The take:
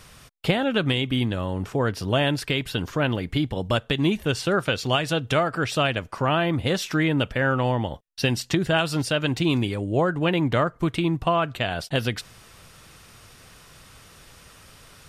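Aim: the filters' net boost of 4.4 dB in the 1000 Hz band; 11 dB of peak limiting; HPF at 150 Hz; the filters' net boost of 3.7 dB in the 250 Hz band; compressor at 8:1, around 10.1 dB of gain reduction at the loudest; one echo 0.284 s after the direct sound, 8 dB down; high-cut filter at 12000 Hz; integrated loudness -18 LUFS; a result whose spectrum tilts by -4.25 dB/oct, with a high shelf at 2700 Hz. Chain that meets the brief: HPF 150 Hz; LPF 12000 Hz; bell 250 Hz +5.5 dB; bell 1000 Hz +4.5 dB; high shelf 2700 Hz +6.5 dB; compressor 8:1, threshold -24 dBFS; limiter -20 dBFS; echo 0.284 s -8 dB; gain +13 dB

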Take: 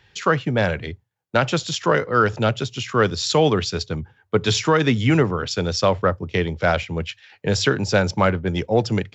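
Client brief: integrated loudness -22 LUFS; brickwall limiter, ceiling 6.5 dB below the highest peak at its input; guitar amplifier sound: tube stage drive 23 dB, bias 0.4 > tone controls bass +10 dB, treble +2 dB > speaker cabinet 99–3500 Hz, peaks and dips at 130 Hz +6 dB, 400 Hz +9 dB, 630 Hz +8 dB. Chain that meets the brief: limiter -10.5 dBFS; tube stage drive 23 dB, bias 0.4; tone controls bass +10 dB, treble +2 dB; speaker cabinet 99–3500 Hz, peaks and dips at 130 Hz +6 dB, 400 Hz +9 dB, 630 Hz +8 dB

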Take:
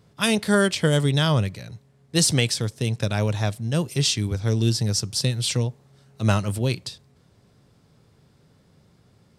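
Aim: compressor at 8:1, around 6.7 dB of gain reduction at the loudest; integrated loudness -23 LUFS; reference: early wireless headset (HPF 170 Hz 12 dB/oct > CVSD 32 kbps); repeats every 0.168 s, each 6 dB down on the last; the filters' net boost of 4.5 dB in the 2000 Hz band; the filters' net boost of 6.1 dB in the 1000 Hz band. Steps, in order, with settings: bell 1000 Hz +7 dB; bell 2000 Hz +3.5 dB; compressor 8:1, threshold -20 dBFS; HPF 170 Hz 12 dB/oct; feedback echo 0.168 s, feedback 50%, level -6 dB; CVSD 32 kbps; gain +5.5 dB

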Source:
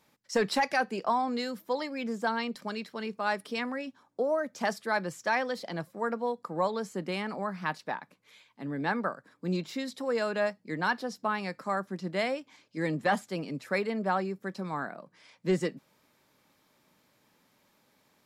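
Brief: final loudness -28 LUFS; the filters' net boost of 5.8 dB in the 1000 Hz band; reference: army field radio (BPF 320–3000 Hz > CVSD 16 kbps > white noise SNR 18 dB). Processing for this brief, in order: BPF 320–3000 Hz; bell 1000 Hz +7.5 dB; CVSD 16 kbps; white noise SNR 18 dB; gain +3 dB

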